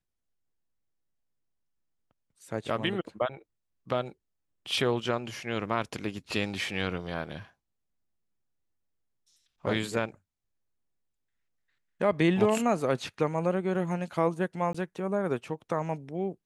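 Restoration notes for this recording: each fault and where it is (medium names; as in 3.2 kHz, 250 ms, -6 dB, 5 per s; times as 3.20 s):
14.73–14.74 s: dropout 15 ms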